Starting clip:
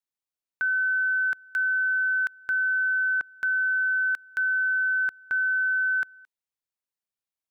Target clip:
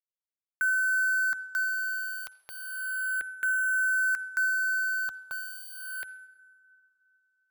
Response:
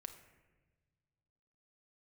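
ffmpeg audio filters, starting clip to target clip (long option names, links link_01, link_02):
-filter_complex "[0:a]acrusher=bits=5:mix=0:aa=0.5,asplit=2[link_01][link_02];[link_02]aemphasis=mode=production:type=bsi[link_03];[1:a]atrim=start_sample=2205,asetrate=26019,aresample=44100[link_04];[link_03][link_04]afir=irnorm=-1:irlink=0,volume=-4.5dB[link_05];[link_01][link_05]amix=inputs=2:normalize=0,asplit=2[link_06][link_07];[link_07]afreqshift=-0.31[link_08];[link_06][link_08]amix=inputs=2:normalize=1,volume=-3.5dB"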